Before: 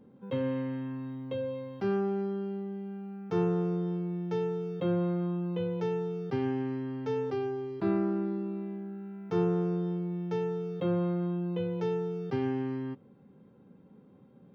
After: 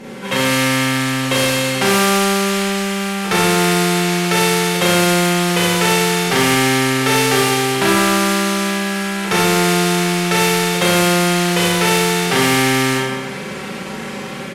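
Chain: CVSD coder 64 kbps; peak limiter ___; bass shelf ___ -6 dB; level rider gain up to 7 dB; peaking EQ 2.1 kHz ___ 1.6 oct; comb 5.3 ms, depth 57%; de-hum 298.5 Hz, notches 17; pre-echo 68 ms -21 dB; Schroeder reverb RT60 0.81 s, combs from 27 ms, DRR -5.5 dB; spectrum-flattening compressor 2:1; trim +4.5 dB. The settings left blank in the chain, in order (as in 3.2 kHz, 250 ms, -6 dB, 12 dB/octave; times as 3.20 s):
-23 dBFS, 140 Hz, +13.5 dB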